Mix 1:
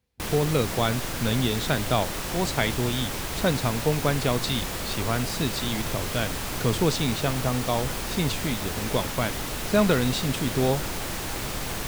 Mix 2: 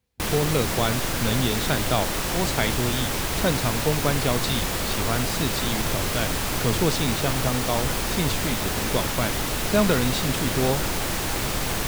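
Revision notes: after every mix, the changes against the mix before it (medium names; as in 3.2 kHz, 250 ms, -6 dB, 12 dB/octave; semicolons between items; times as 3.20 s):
background +5.0 dB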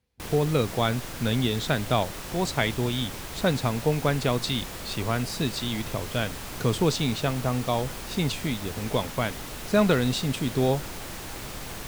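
background -11.0 dB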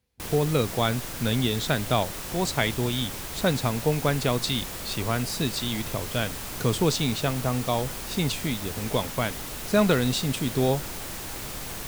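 master: add treble shelf 6.5 kHz +6 dB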